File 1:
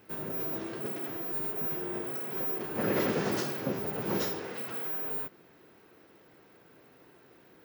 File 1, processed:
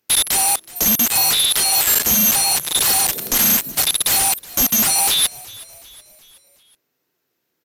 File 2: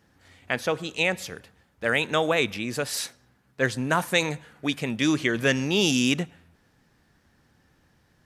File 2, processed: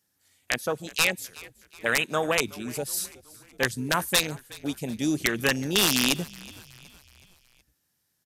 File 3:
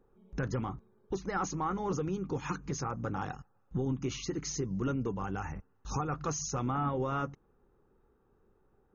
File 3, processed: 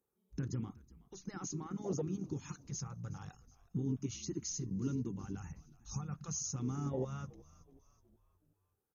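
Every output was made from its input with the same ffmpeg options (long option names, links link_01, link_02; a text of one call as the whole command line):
ffmpeg -i in.wav -filter_complex "[0:a]aemphasis=mode=production:type=75fm,afwtdn=0.0631,highpass=73,highshelf=frequency=3600:gain=9,asplit=2[link_01][link_02];[link_02]acompressor=threshold=-17dB:ratio=5,volume=-0.5dB[link_03];[link_01][link_03]amix=inputs=2:normalize=0,aeval=exprs='(mod(1.33*val(0)+1,2)-1)/1.33':channel_layout=same,asplit=2[link_04][link_05];[link_05]asplit=4[link_06][link_07][link_08][link_09];[link_06]adelay=371,afreqshift=-58,volume=-21dB[link_10];[link_07]adelay=742,afreqshift=-116,volume=-26.8dB[link_11];[link_08]adelay=1113,afreqshift=-174,volume=-32.7dB[link_12];[link_09]adelay=1484,afreqshift=-232,volume=-38.5dB[link_13];[link_10][link_11][link_12][link_13]amix=inputs=4:normalize=0[link_14];[link_04][link_14]amix=inputs=2:normalize=0,aresample=32000,aresample=44100,volume=-7.5dB" out.wav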